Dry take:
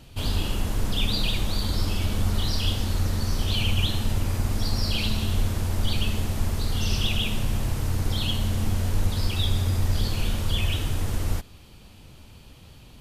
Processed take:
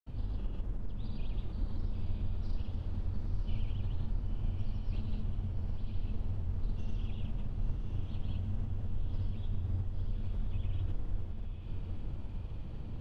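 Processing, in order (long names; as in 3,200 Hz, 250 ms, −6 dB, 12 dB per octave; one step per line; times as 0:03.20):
low-pass filter 1,300 Hz 6 dB per octave
spectral tilt −2 dB per octave
downward compressor 8 to 1, threshold −31 dBFS, peak gain reduction 23.5 dB
granular cloud, pitch spread up and down by 0 semitones
on a send: feedback delay with all-pass diffusion 980 ms, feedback 49%, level −5.5 dB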